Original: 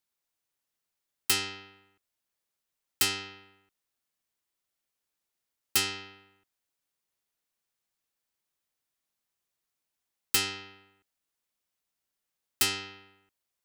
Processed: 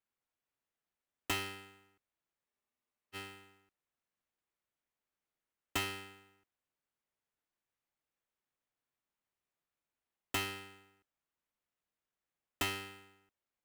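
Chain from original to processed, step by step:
running median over 9 samples
noise that follows the level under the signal 17 dB
frozen spectrum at 0:02.48, 0.67 s
level −3 dB

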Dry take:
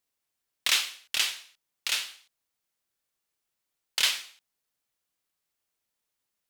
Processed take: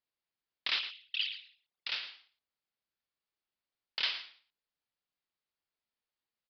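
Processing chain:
0:00.79–0:01.87: spectral envelope exaggerated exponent 3
hard clipping −14 dBFS, distortion −25 dB
on a send: single-tap delay 112 ms −12.5 dB
on the sum: downsampling to 11,025 Hz
level −7 dB

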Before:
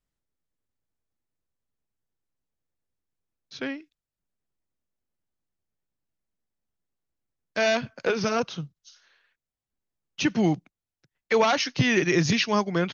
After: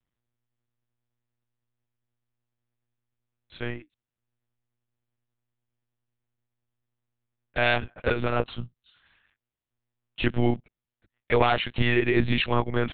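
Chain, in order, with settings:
one-pitch LPC vocoder at 8 kHz 120 Hz

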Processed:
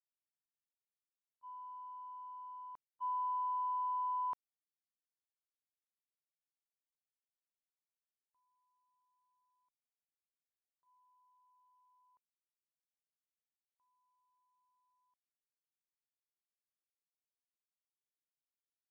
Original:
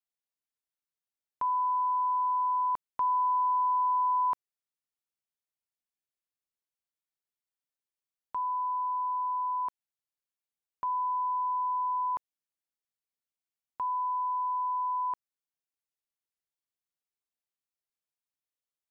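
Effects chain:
noise gate −25 dBFS, range −54 dB
level +3.5 dB

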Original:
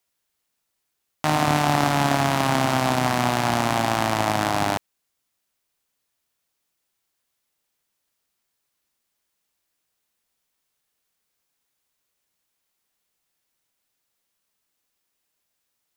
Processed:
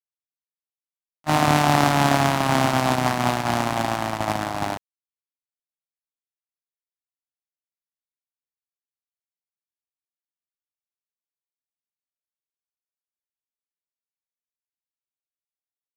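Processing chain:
noise gate −20 dBFS, range −34 dB
level +2.5 dB

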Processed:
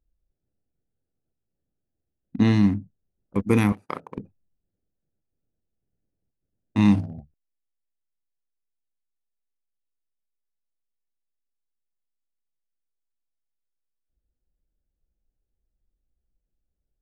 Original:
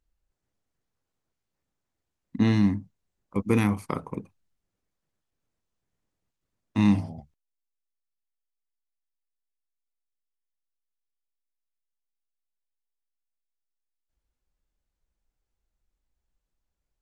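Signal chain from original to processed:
adaptive Wiener filter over 41 samples
0:03.72–0:04.18: high-pass filter 750 Hz 6 dB per octave
level +3 dB

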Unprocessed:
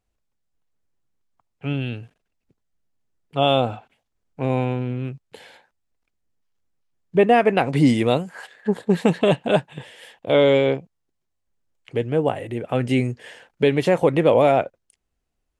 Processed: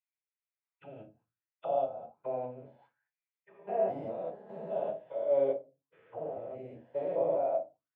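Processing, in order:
spectrum averaged block by block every 400 ms
rectangular room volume 590 cubic metres, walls furnished, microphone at 4.9 metres
phase-vocoder stretch with locked phases 0.51×
envelope filter 630–2,300 Hz, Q 4.9, down, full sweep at −20.5 dBFS
level −8.5 dB

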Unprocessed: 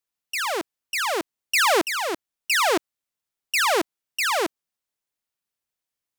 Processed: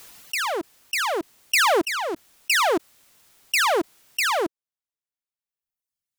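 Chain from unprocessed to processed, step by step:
reverb reduction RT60 1.4 s
background raised ahead of every attack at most 29 dB per second
level +1 dB

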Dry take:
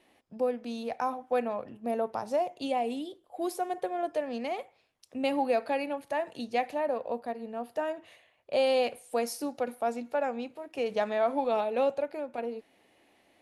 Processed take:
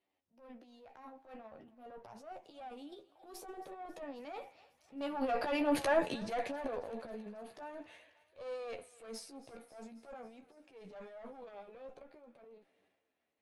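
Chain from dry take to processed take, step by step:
one-sided soft clipper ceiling −28 dBFS
source passing by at 0:05.79, 15 m/s, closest 1.5 metres
high-shelf EQ 10,000 Hz −11 dB
in parallel at +1 dB: downward compressor, threshold −57 dBFS, peak gain reduction 22.5 dB
on the sum: transient designer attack −10 dB, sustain +10 dB
flanger 0.47 Hz, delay 9.9 ms, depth 5.8 ms, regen +27%
on a send: feedback echo with a high-pass in the loop 271 ms, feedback 70%, high-pass 700 Hz, level −19 dB
on the sum: level +12 dB

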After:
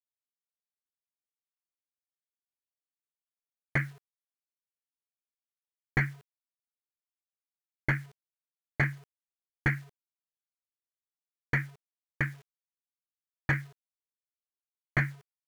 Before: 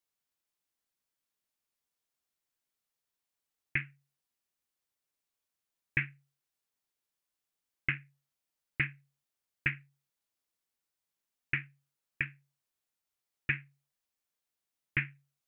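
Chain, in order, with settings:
in parallel at −11.5 dB: sine wavefolder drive 12 dB, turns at −15 dBFS
on the sum: Savitzky-Golay smoothing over 41 samples
bit reduction 10 bits
level +4 dB

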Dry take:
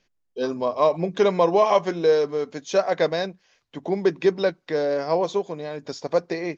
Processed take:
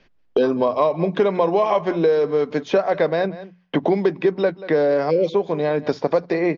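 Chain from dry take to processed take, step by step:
time-frequency box erased 0:05.10–0:05.34, 590–2,000 Hz
noise gate with hold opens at −45 dBFS
mains-hum notches 60/120/180 Hz
in parallel at −2 dB: brickwall limiter −18.5 dBFS, peak gain reduction 11.5 dB
on the sum: high-frequency loss of the air 230 metres
single-tap delay 184 ms −20.5 dB
multiband upward and downward compressor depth 100%

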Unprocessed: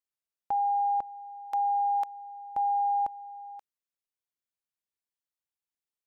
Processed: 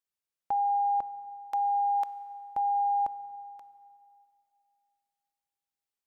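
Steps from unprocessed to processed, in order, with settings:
dense smooth reverb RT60 2.5 s, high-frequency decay 0.85×, DRR 14 dB

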